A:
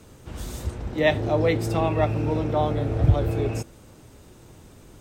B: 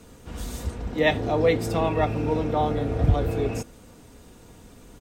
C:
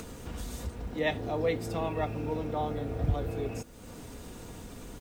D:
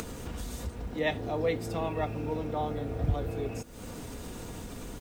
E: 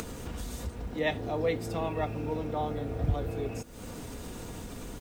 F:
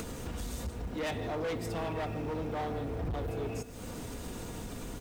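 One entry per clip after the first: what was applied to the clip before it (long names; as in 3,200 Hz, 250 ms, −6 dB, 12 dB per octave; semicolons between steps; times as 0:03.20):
comb filter 4.2 ms, depth 39%
upward compression, threshold −23 dBFS; bit reduction 9 bits; level −8.5 dB
upward compression, threshold −34 dBFS
no processing that can be heard
on a send at −14.5 dB: convolution reverb, pre-delay 3 ms; on the sum: hard clipping −31.5 dBFS, distortion −8 dB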